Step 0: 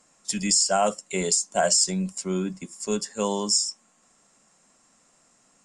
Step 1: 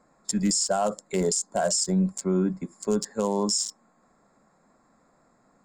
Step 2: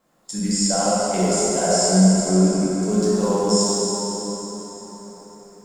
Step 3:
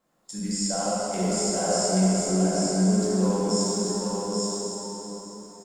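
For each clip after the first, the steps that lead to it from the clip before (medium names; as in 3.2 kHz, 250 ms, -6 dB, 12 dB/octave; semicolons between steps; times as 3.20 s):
local Wiener filter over 15 samples; dynamic bell 2.4 kHz, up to -7 dB, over -49 dBFS, Q 2.1; peak limiter -20 dBFS, peak gain reduction 10.5 dB; trim +4.5 dB
level rider gain up to 4.5 dB; bit crusher 11-bit; plate-style reverb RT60 4.7 s, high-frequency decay 0.75×, DRR -9.5 dB; trim -7.5 dB
delay 832 ms -3 dB; trim -7 dB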